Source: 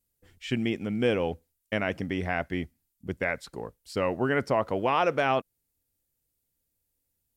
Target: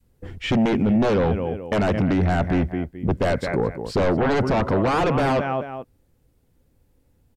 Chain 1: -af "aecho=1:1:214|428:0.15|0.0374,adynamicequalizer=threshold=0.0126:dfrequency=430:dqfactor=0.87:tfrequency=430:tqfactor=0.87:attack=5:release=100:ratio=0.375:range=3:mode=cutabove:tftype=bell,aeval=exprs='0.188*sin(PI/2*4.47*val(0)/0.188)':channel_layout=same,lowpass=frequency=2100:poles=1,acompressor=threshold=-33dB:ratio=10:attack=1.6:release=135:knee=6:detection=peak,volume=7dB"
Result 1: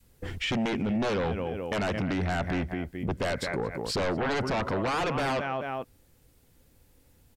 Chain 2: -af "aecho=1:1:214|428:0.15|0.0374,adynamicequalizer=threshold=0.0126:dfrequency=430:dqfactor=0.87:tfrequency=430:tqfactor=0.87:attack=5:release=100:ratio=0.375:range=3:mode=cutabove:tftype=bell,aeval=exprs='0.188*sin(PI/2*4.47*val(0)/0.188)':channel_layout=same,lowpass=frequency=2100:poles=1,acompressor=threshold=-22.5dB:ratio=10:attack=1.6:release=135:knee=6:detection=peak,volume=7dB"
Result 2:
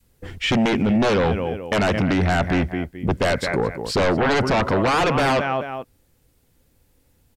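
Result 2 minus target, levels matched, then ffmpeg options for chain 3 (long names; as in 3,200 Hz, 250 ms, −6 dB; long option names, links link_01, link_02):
2,000 Hz band +4.5 dB
-af "aecho=1:1:214|428:0.15|0.0374,adynamicequalizer=threshold=0.0126:dfrequency=430:dqfactor=0.87:tfrequency=430:tqfactor=0.87:attack=5:release=100:ratio=0.375:range=3:mode=cutabove:tftype=bell,aeval=exprs='0.188*sin(PI/2*4.47*val(0)/0.188)':channel_layout=same,lowpass=frequency=670:poles=1,acompressor=threshold=-22.5dB:ratio=10:attack=1.6:release=135:knee=6:detection=peak,volume=7dB"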